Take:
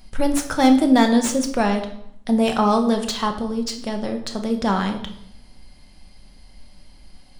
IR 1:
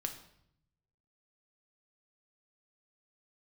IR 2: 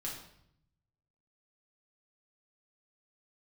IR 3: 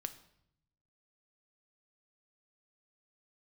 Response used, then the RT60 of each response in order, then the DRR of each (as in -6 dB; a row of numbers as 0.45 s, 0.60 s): 1; 0.70 s, 0.70 s, 0.75 s; 4.5 dB, -5.0 dB, 9.0 dB